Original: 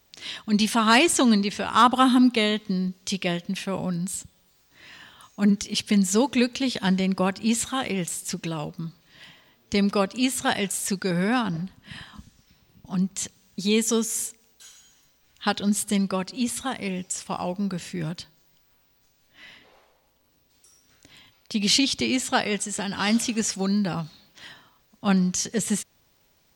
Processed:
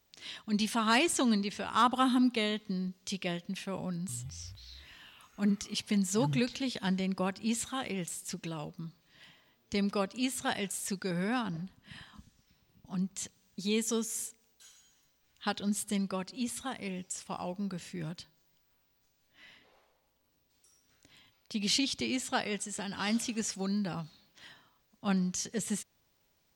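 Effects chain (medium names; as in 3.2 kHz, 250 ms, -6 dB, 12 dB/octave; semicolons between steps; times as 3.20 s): 3.92–6.61 s: ever faster or slower copies 167 ms, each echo -6 st, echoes 3, each echo -6 dB; trim -9 dB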